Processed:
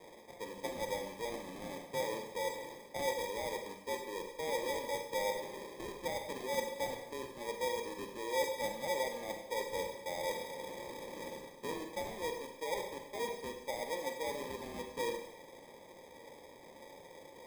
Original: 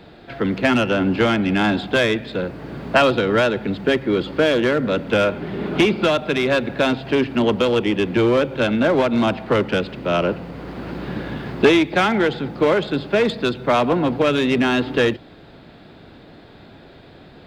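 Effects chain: reverse; compressor 5:1, threshold -31 dBFS, peak gain reduction 19.5 dB; reverse; vowel filter e; sample-and-hold 31×; Schroeder reverb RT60 0.85 s, combs from 32 ms, DRR 4.5 dB; gain +1 dB

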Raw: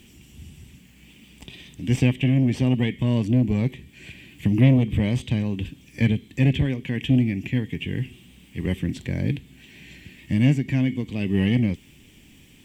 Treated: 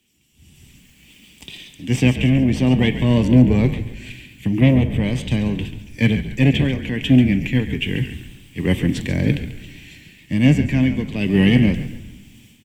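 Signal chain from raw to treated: low shelf 150 Hz -6.5 dB; AGC gain up to 11.5 dB; frequency-shifting echo 0.139 s, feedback 47%, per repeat -51 Hz, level -10.5 dB; on a send at -14.5 dB: reverb RT60 1.5 s, pre-delay 4 ms; on the sum: three-band expander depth 40%; gain -1 dB

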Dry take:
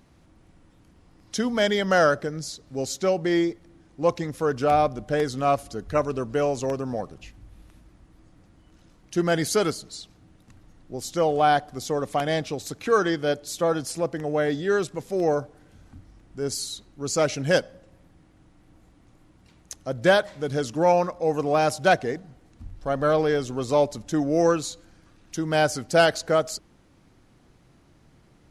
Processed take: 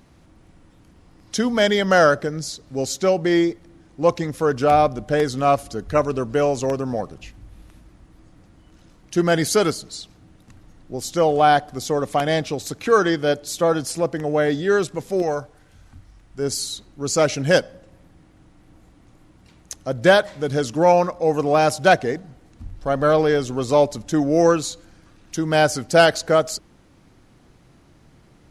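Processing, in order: 15.22–16.39 bell 280 Hz -8 dB 2.5 oct; gain +4.5 dB

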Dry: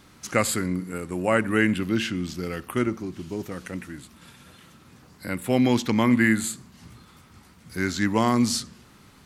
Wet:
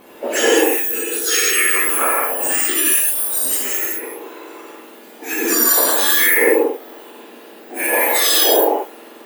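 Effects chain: spectrum mirrored in octaves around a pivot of 1900 Hz; 2.42–3.79 tilt +2 dB/oct; limiter -19 dBFS, peak gain reduction 8.5 dB; non-linear reverb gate 0.24 s flat, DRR -6 dB; gain +8 dB

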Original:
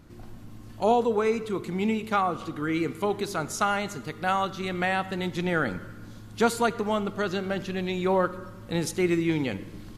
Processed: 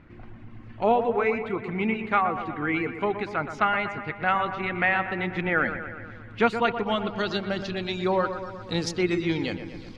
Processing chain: reverb removal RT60 0.64 s; low-pass sweep 2200 Hz -> 4700 Hz, 6.25–7.51; dark delay 0.121 s, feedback 63%, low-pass 2400 Hz, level -9.5 dB

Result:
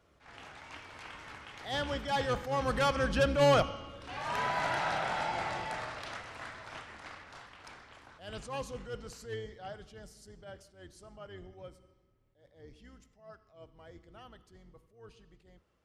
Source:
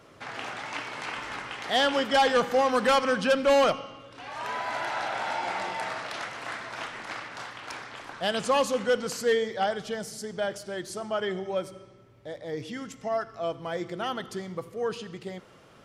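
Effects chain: octaver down 2 oct, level +2 dB; Doppler pass-by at 4.35, 10 m/s, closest 8.3 m; attack slew limiter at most 140 dB/s

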